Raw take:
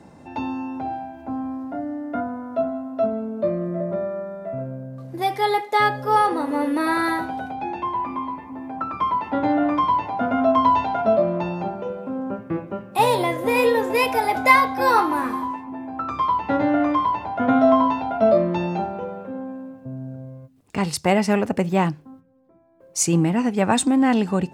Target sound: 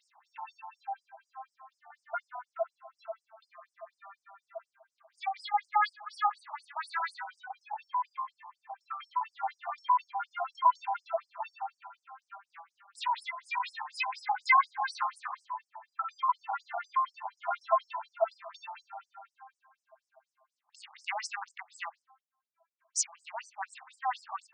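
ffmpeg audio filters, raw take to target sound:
-filter_complex "[0:a]asettb=1/sr,asplit=3[s0][s1][s2];[s0]atrim=end=1.904[s3];[s1]atrim=start=1.9:end=2.43,asetpts=PTS-STARTPTS,afade=t=in:d=0.004:c=qsin,afade=t=out:st=0.526:d=0.004:c=qsin,acontrast=40[s4];[s2]atrim=start=2.426[s5];[s3][s4]acrossfade=d=0.004:c1=hsin:c2=qsin[s6];[s6][s5]acrossfade=d=0.004:c1=qsin:c2=hsin,afftfilt=real='re*between(b*sr/1024,890*pow(7000/890,0.5+0.5*sin(2*PI*4.1*pts/sr))/1.41,890*pow(7000/890,0.5+0.5*sin(2*PI*4.1*pts/sr))*1.41)':imag='im*between(b*sr/1024,890*pow(7000/890,0.5+0.5*sin(2*PI*4.1*pts/sr))/1.41,890*pow(7000/890,0.5+0.5*sin(2*PI*4.1*pts/sr))*1.41)':win_size=1024:overlap=0.75,volume=0.596"

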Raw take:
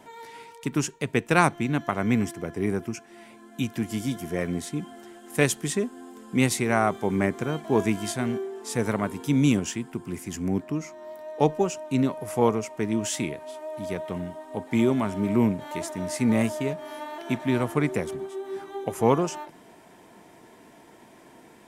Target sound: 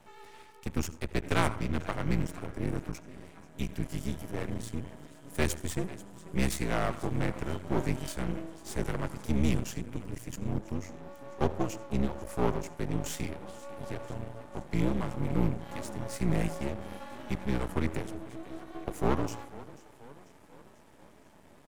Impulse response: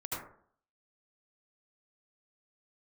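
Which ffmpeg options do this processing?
-filter_complex "[0:a]lowshelf=f=150:g=7,afreqshift=-61,asplit=6[s0][s1][s2][s3][s4][s5];[s1]adelay=491,afreqshift=35,volume=0.119[s6];[s2]adelay=982,afreqshift=70,volume=0.0676[s7];[s3]adelay=1473,afreqshift=105,volume=0.0385[s8];[s4]adelay=1964,afreqshift=140,volume=0.0221[s9];[s5]adelay=2455,afreqshift=175,volume=0.0126[s10];[s0][s6][s7][s8][s9][s10]amix=inputs=6:normalize=0,asplit=2[s11][s12];[1:a]atrim=start_sample=2205[s13];[s12][s13]afir=irnorm=-1:irlink=0,volume=0.15[s14];[s11][s14]amix=inputs=2:normalize=0,aeval=exprs='max(val(0),0)':c=same,volume=0.562"

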